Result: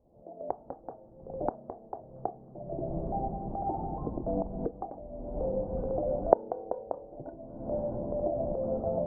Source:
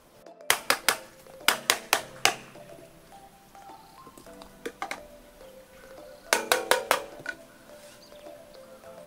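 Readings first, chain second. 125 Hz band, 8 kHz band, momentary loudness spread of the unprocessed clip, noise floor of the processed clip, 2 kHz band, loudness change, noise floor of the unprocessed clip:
+14.0 dB, under -40 dB, 15 LU, -54 dBFS, under -35 dB, -7.5 dB, -54 dBFS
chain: recorder AGC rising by 45 dB/s; elliptic low-pass 760 Hz, stop band 80 dB; bell 61 Hz +8 dB 2.1 oct; gain -11 dB

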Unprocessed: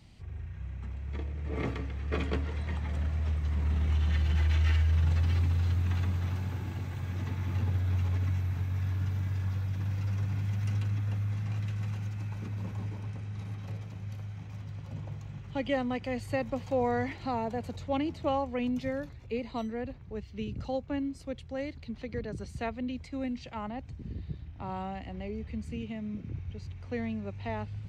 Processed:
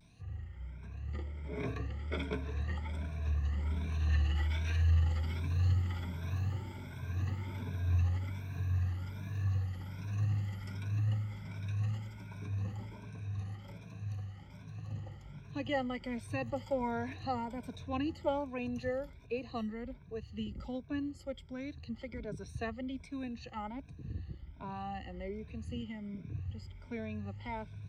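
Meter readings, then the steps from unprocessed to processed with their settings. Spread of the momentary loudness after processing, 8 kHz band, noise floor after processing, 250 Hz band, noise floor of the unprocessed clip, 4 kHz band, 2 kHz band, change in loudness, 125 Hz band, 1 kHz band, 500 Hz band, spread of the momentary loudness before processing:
12 LU, n/a, -52 dBFS, -5.0 dB, -47 dBFS, -3.5 dB, -3.5 dB, -4.5 dB, -4.0 dB, -4.5 dB, -5.0 dB, 13 LU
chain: moving spectral ripple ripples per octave 1.6, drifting +1.3 Hz, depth 17 dB; vibrato 1.1 Hz 67 cents; gain -7 dB

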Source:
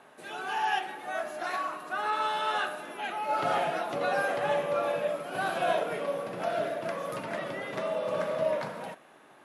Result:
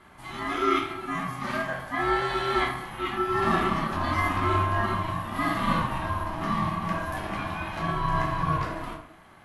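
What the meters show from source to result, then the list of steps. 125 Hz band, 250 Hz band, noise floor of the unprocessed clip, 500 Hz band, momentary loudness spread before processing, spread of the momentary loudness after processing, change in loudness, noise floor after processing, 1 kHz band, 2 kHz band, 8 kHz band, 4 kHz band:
+16.5 dB, +11.5 dB, -56 dBFS, -2.5 dB, 7 LU, 7 LU, +3.5 dB, -51 dBFS, +4.0 dB, +3.5 dB, +1.5 dB, +3.0 dB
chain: shoebox room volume 490 m³, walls furnished, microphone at 3.7 m; ring modulator 480 Hz

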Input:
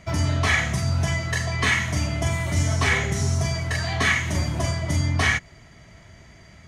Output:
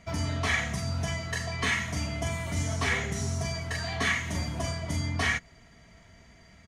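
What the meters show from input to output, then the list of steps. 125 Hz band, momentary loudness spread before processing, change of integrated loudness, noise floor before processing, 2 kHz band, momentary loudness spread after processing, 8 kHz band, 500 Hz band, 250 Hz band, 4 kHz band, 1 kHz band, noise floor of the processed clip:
-8.5 dB, 5 LU, -7.0 dB, -49 dBFS, -6.5 dB, 5 LU, -6.0 dB, -5.5 dB, -6.0 dB, -5.5 dB, -6.0 dB, -56 dBFS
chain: comb 4.3 ms, depth 35%; gain -6.5 dB

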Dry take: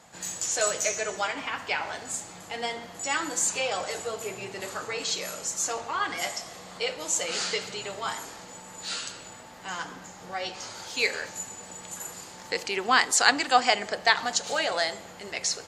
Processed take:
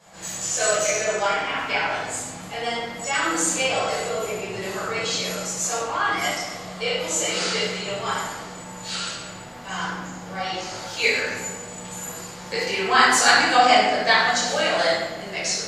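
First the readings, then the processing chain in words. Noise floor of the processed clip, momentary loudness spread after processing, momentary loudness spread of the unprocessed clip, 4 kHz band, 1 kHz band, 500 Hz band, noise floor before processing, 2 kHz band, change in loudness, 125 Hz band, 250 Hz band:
-38 dBFS, 16 LU, 15 LU, +5.5 dB, +7.0 dB, +7.0 dB, -46 dBFS, +6.5 dB, +6.0 dB, +11.5 dB, +8.5 dB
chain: shoebox room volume 660 m³, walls mixed, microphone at 5.5 m; gain -5.5 dB

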